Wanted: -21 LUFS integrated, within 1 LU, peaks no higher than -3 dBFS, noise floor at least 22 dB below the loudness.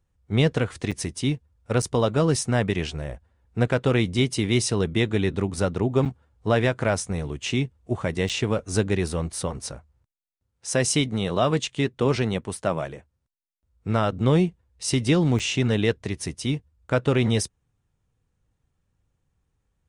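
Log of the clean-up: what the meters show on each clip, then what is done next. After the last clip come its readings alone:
dropouts 5; longest dropout 6.7 ms; loudness -24.5 LUFS; peak level -8.5 dBFS; loudness target -21.0 LUFS
-> interpolate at 0.91/1.82/6.05/8.29/15.39 s, 6.7 ms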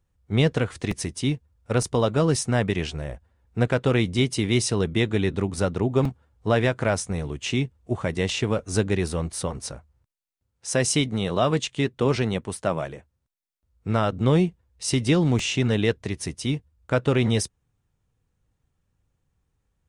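dropouts 0; loudness -24.5 LUFS; peak level -8.5 dBFS; loudness target -21.0 LUFS
-> trim +3.5 dB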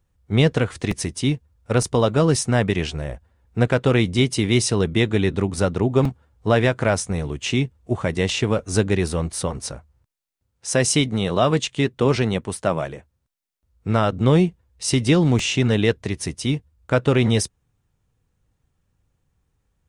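loudness -21.0 LUFS; peak level -5.0 dBFS; noise floor -73 dBFS

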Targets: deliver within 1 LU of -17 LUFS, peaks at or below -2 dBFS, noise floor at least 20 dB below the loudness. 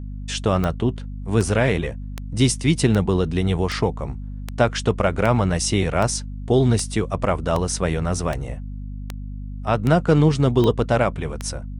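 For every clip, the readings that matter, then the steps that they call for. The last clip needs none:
clicks found 15; hum 50 Hz; highest harmonic 250 Hz; hum level -29 dBFS; loudness -21.0 LUFS; peak level -4.0 dBFS; loudness target -17.0 LUFS
-> de-click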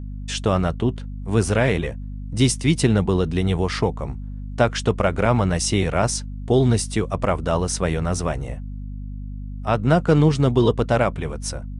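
clicks found 0; hum 50 Hz; highest harmonic 250 Hz; hum level -29 dBFS
-> de-hum 50 Hz, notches 5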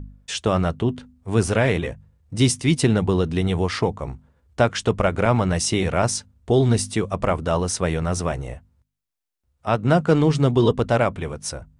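hum not found; loudness -21.5 LUFS; peak level -4.5 dBFS; loudness target -17.0 LUFS
-> trim +4.5 dB; peak limiter -2 dBFS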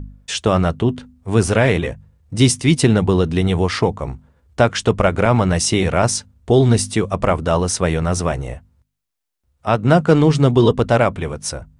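loudness -17.0 LUFS; peak level -2.0 dBFS; noise floor -71 dBFS

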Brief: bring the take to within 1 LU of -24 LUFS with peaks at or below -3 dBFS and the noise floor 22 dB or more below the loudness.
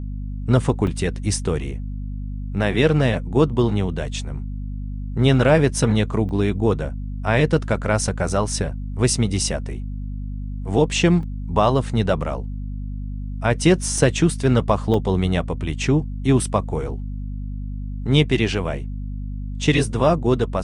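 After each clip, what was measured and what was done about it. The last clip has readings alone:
dropouts 5; longest dropout 2.3 ms; hum 50 Hz; highest harmonic 250 Hz; hum level -26 dBFS; loudness -21.0 LUFS; peak level -3.0 dBFS; loudness target -24.0 LUFS
-> interpolate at 0.87/6.29/11.23/13.98/14.94 s, 2.3 ms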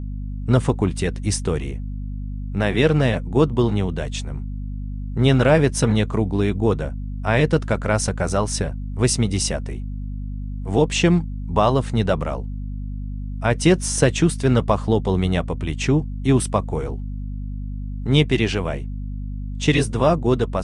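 dropouts 0; hum 50 Hz; highest harmonic 250 Hz; hum level -26 dBFS
-> hum notches 50/100/150/200/250 Hz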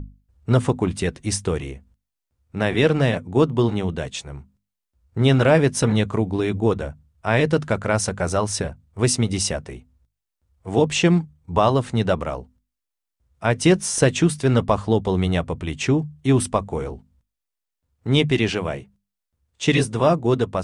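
hum not found; loudness -21.0 LUFS; peak level -3.5 dBFS; loudness target -24.0 LUFS
-> trim -3 dB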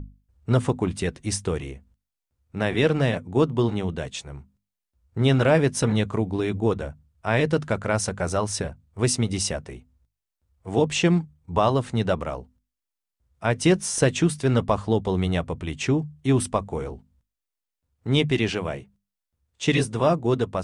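loudness -24.0 LUFS; peak level -6.5 dBFS; noise floor -86 dBFS

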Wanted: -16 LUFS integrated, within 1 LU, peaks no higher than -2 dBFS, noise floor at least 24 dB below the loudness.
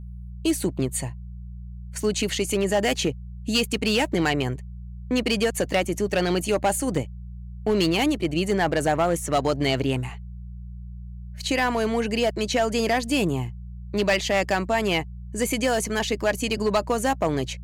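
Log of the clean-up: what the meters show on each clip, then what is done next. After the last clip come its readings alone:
clipped samples 1.3%; clipping level -15.0 dBFS; hum 60 Hz; highest harmonic 180 Hz; hum level -35 dBFS; loudness -24.0 LUFS; peak level -15.0 dBFS; loudness target -16.0 LUFS
-> clip repair -15 dBFS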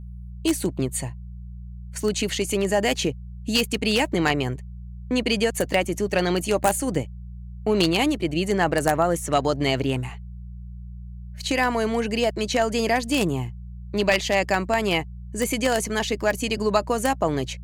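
clipped samples 0.0%; hum 60 Hz; highest harmonic 180 Hz; hum level -34 dBFS
-> de-hum 60 Hz, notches 3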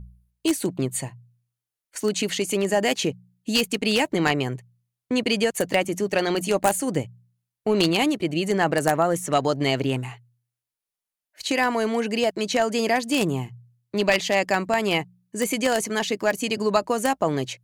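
hum not found; loudness -23.5 LUFS; peak level -5.5 dBFS; loudness target -16.0 LUFS
-> trim +7.5 dB; peak limiter -2 dBFS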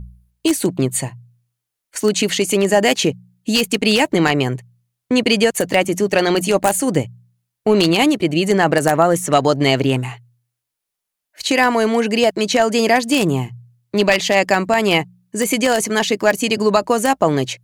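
loudness -16.5 LUFS; peak level -2.0 dBFS; noise floor -81 dBFS

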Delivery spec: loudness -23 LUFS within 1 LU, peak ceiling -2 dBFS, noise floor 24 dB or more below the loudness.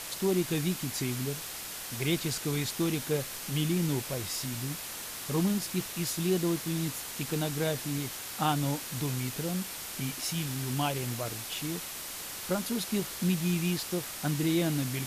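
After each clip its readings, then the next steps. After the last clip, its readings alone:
noise floor -40 dBFS; noise floor target -56 dBFS; loudness -31.5 LUFS; peak level -15.5 dBFS; loudness target -23.0 LUFS
-> noise reduction 16 dB, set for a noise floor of -40 dBFS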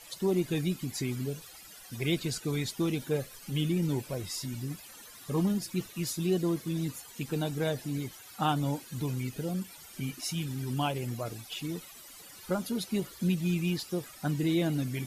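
noise floor -50 dBFS; noise floor target -57 dBFS
-> noise reduction 7 dB, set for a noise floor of -50 dBFS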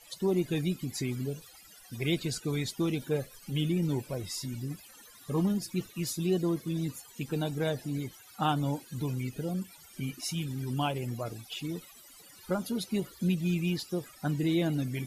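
noise floor -54 dBFS; noise floor target -57 dBFS
-> noise reduction 6 dB, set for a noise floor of -54 dBFS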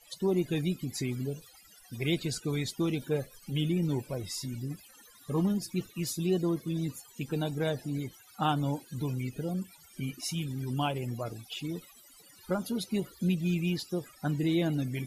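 noise floor -57 dBFS; loudness -32.5 LUFS; peak level -16.0 dBFS; loudness target -23.0 LUFS
-> trim +9.5 dB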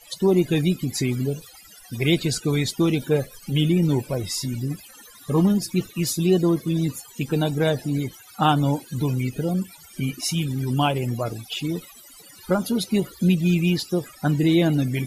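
loudness -23.0 LUFS; peak level -6.5 dBFS; noise floor -47 dBFS

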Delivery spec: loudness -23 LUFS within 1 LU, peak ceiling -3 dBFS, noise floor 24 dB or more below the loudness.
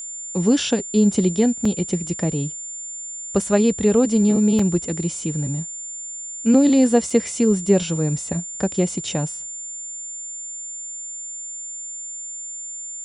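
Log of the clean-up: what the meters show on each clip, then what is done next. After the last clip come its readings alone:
dropouts 3; longest dropout 3.8 ms; steady tone 7.2 kHz; tone level -30 dBFS; loudness -21.5 LUFS; peak level -3.0 dBFS; loudness target -23.0 LUFS
-> interpolate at 1.65/4.59/7.10 s, 3.8 ms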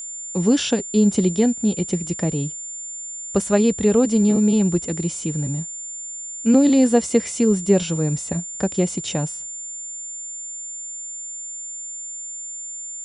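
dropouts 0; steady tone 7.2 kHz; tone level -30 dBFS
-> band-stop 7.2 kHz, Q 30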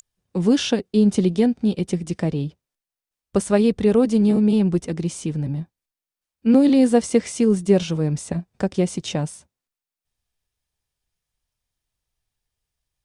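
steady tone not found; loudness -20.0 LUFS; peak level -3.5 dBFS; loudness target -23.0 LUFS
-> trim -3 dB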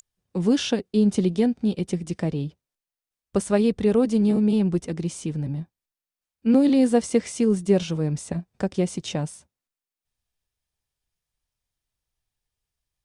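loudness -23.0 LUFS; peak level -6.5 dBFS; noise floor -91 dBFS

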